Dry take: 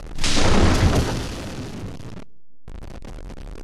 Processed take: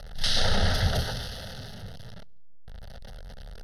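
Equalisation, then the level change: treble shelf 2.1 kHz +8.5 dB; static phaser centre 1.6 kHz, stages 8; -6.5 dB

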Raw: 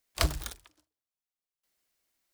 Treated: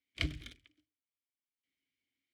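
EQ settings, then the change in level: vowel filter i; resonant low shelf 160 Hz +11.5 dB, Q 1.5; peaking EQ 820 Hz +7.5 dB 0.93 oct; +7.0 dB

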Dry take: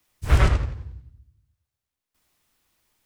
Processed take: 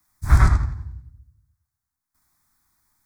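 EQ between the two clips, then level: static phaser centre 1.2 kHz, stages 4; +3.5 dB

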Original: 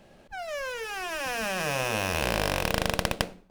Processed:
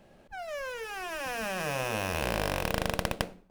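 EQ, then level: peaking EQ 4.9 kHz -3.5 dB 2.3 oct; -2.5 dB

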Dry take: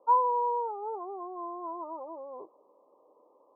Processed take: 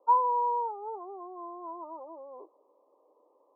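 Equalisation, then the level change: high-pass 260 Hz 24 dB/octave; dynamic bell 930 Hz, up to +6 dB, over -41 dBFS, Q 5.9; distance through air 400 m; -2.0 dB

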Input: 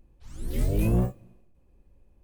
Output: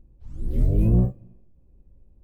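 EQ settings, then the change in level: FFT filter 150 Hz 0 dB, 560 Hz -7 dB, 1.7 kHz -17 dB, 6 kHz -20 dB; +5.5 dB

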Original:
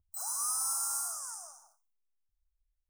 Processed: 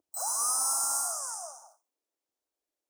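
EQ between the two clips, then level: resonant high-pass 300 Hz, resonance Q 3.5; peaking EQ 580 Hz +12.5 dB 1.7 oct; peaking EQ 6.5 kHz +5.5 dB 1.6 oct; 0.0 dB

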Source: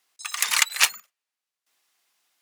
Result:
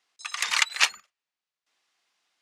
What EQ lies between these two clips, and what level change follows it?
low-pass 5.9 kHz 12 dB/octave; -1.0 dB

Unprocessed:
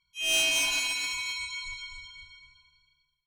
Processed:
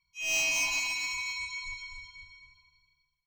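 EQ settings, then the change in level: static phaser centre 2.3 kHz, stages 8; 0.0 dB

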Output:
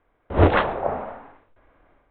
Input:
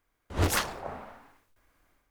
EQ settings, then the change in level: steep low-pass 3.9 kHz 96 dB/octave; distance through air 370 m; peaking EQ 570 Hz +7.5 dB 1.6 oct; +9.0 dB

